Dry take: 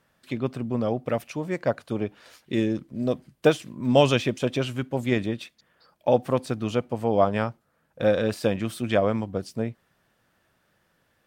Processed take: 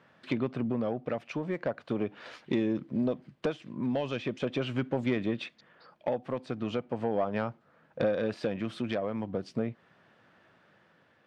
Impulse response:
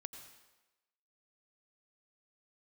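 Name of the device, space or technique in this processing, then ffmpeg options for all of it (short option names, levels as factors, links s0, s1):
AM radio: -af "highpass=130,lowpass=3200,acompressor=threshold=0.0282:ratio=6,asoftclip=type=tanh:threshold=0.0631,tremolo=f=0.39:d=0.36,volume=2.24"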